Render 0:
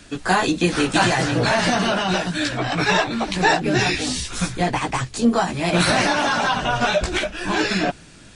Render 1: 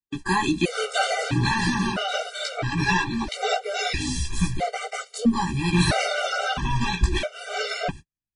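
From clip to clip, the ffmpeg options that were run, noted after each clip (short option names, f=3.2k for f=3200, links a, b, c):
-af "asubboost=boost=2.5:cutoff=160,agate=range=-54dB:threshold=-30dB:ratio=16:detection=peak,afftfilt=real='re*gt(sin(2*PI*0.76*pts/sr)*(1-2*mod(floor(b*sr/1024/390),2)),0)':imag='im*gt(sin(2*PI*0.76*pts/sr)*(1-2*mod(floor(b*sr/1024/390),2)),0)':win_size=1024:overlap=0.75,volume=-1.5dB"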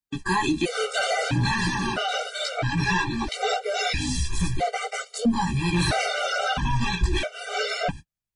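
-filter_complex "[0:a]asplit=2[a][b];[b]alimiter=limit=-19dB:level=0:latency=1:release=29,volume=-1dB[c];[a][c]amix=inputs=2:normalize=0,asoftclip=type=tanh:threshold=-7.5dB,flanger=delay=1.3:depth=1.3:regen=-54:speed=0.75:shape=sinusoidal"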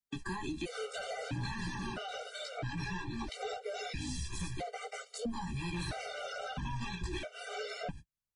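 -filter_complex "[0:a]acrossover=split=83|400[a][b][c];[a]acompressor=threshold=-37dB:ratio=4[d];[b]acompressor=threshold=-35dB:ratio=4[e];[c]acompressor=threshold=-37dB:ratio=4[f];[d][e][f]amix=inputs=3:normalize=0,volume=-5.5dB"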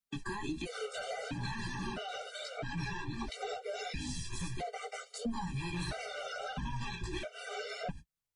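-af "flanger=delay=4.4:depth=3.8:regen=-37:speed=1.5:shape=sinusoidal,volume=4dB"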